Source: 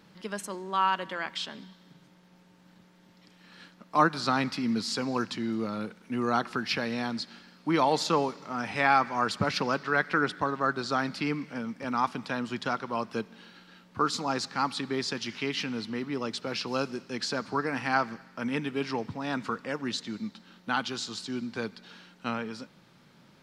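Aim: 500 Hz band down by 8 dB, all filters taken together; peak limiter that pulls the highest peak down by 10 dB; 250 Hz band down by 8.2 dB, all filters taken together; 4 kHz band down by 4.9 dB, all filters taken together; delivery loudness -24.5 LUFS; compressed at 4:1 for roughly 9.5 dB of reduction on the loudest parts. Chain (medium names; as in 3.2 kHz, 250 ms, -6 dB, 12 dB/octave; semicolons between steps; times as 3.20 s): peaking EQ 250 Hz -7.5 dB; peaking EQ 500 Hz -8 dB; peaking EQ 4 kHz -6 dB; compression 4:1, threshold -31 dBFS; trim +16 dB; peak limiter -13 dBFS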